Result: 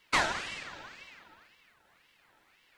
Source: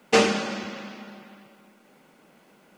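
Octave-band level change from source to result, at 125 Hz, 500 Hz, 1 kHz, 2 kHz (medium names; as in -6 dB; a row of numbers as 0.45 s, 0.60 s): -11.5 dB, -17.5 dB, -5.0 dB, -3.5 dB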